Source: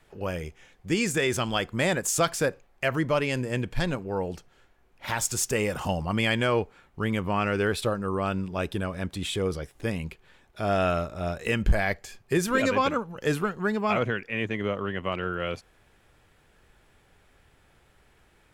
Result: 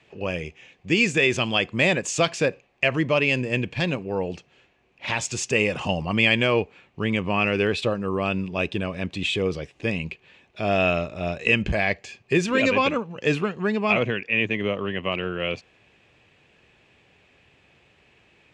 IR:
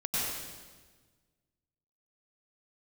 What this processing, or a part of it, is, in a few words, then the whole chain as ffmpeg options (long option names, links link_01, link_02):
car door speaker: -af "highpass=100,equalizer=frequency=870:width_type=q:width=4:gain=-3,equalizer=frequency=1400:width_type=q:width=4:gain=-8,equalizer=frequency=2600:width_type=q:width=4:gain=10,equalizer=frequency=5400:width_type=q:width=4:gain=-3,lowpass=frequency=6600:width=0.5412,lowpass=frequency=6600:width=1.3066,volume=3.5dB"